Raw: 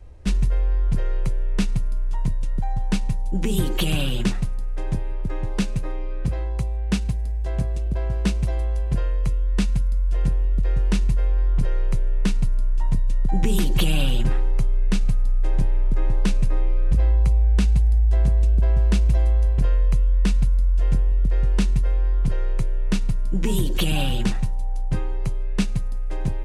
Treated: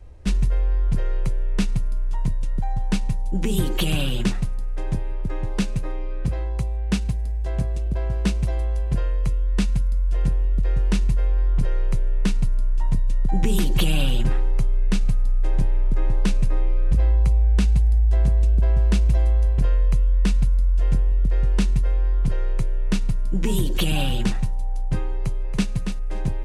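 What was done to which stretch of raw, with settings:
0:25.16–0:25.71: delay throw 280 ms, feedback 15%, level −7 dB

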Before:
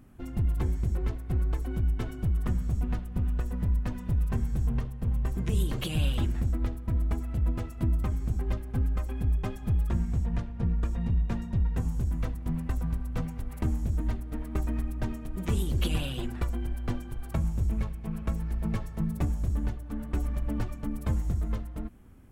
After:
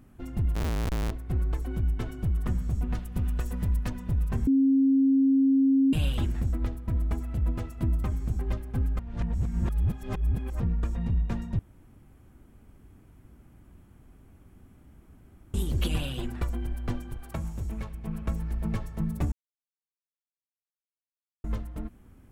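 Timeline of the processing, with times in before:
0:00.55–0:01.11: comparator with hysteresis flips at −29.5 dBFS
0:02.95–0:03.90: high-shelf EQ 2,400 Hz +8.5 dB
0:04.47–0:05.93: beep over 270 Hz −18 dBFS
0:08.99–0:10.60: reverse
0:11.59–0:15.54: fill with room tone
0:17.17–0:17.93: low-shelf EQ 260 Hz −6.5 dB
0:19.32–0:21.44: silence

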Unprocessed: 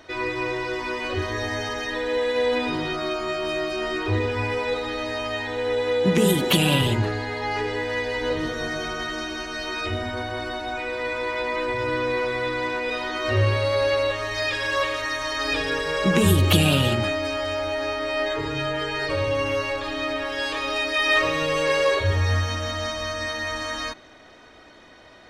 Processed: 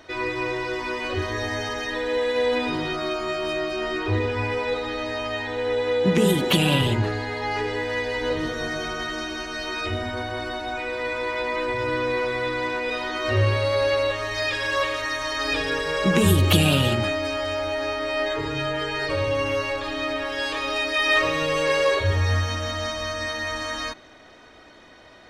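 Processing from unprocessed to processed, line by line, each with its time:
0:03.53–0:07.05: high-shelf EQ 7,700 Hz −6 dB

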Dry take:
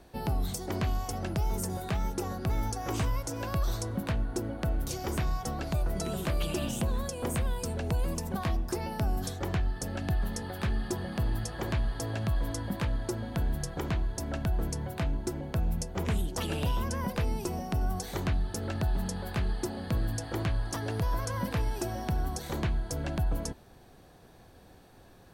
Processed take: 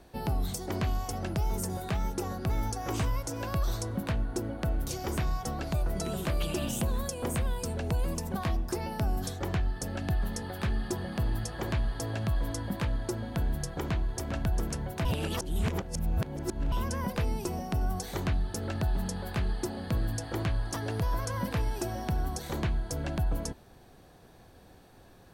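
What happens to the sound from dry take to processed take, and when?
0:06.67–0:07.14: high-shelf EQ 9,100 Hz +7 dB
0:13.68–0:14.41: delay throw 400 ms, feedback 55%, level −8 dB
0:15.05–0:16.72: reverse

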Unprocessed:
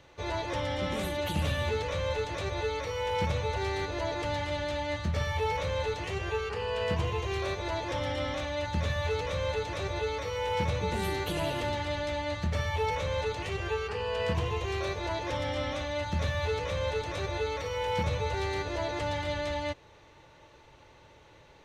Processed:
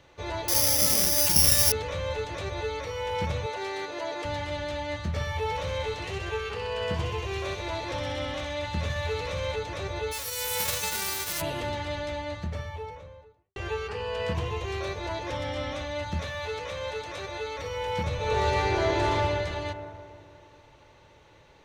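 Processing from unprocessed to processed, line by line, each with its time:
0:00.48–0:01.72: bad sample-rate conversion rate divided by 8×, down none, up zero stuff
0:03.46–0:04.25: high-pass filter 290 Hz
0:05.42–0:09.56: delay with a high-pass on its return 64 ms, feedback 73%, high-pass 2,100 Hz, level −5 dB
0:10.11–0:11.40: spectral envelope flattened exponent 0.1
0:11.93–0:13.56: fade out and dull
0:16.20–0:17.59: low-shelf EQ 280 Hz −10 dB
0:18.15–0:19.13: thrown reverb, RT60 2.5 s, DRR −6.5 dB

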